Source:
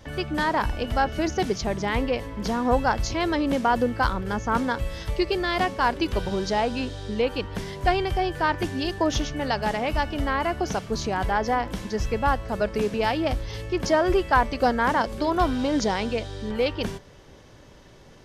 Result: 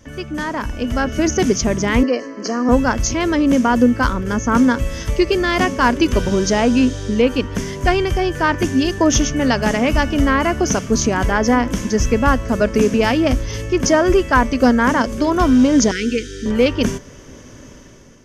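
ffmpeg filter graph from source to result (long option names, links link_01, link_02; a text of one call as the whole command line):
ffmpeg -i in.wav -filter_complex "[0:a]asettb=1/sr,asplit=3[link_01][link_02][link_03];[link_01]atrim=end=2.034[link_04];[link_02]atrim=start=2.03:end=2.69,asetpts=PTS-STARTPTS,afade=type=in:duration=0.004:curve=qsin,afade=type=out:start_time=0.656:duration=0.004:curve=qsin,asuperstop=centerf=3600:order=4:qfactor=2.6,highpass=frequency=270:width=0.5412,highpass=frequency=270:width=1.3066,equalizer=frequency=310:width_type=q:width=4:gain=7,equalizer=frequency=530:width_type=q:width=4:gain=-4,equalizer=frequency=1000:width_type=q:width=4:gain=-3,equalizer=frequency=2500:width_type=q:width=4:gain=-9,equalizer=frequency=4100:width_type=q:width=4:gain=7,lowpass=frequency=5800:width=0.5412,lowpass=frequency=5800:width=1.3066,aecho=1:1:1.7:0.44,atrim=end_sample=29106[link_05];[link_03]atrim=start=2.686[link_06];[link_04][link_05]acrossfade=duration=0.004:curve1=hsin:curve2=qsin[link_07];[link_07][link_06]acrossfade=duration=0.004:curve1=qsin:curve2=hsin,asettb=1/sr,asplit=3[link_08][link_09][link_10];[link_08]atrim=end=15.914[link_11];[link_09]atrim=start=15.91:end=16.46,asetpts=PTS-STARTPTS,afade=type=in:duration=0.004:curve=qsin,afade=type=out:start_time=0.546:duration=0.004:curve=qsin,asuperstop=centerf=810:order=20:qfactor=0.96,equalizer=frequency=100:width=0.78:gain=-11[link_12];[link_10]atrim=start=16.456[link_13];[link_11][link_12]acrossfade=duration=0.004:curve1=hsin:curve2=qsin[link_14];[link_14][link_13]acrossfade=duration=0.004:curve1=qsin:curve2=hsin,equalizer=frequency=250:width_type=o:width=0.33:gain=9,equalizer=frequency=800:width_type=o:width=0.33:gain=-9,equalizer=frequency=4000:width_type=o:width=0.33:gain=-9,equalizer=frequency=6300:width_type=o:width=0.33:gain=10,dynaudnorm=framelen=680:gausssize=3:maxgain=11.5dB" out.wav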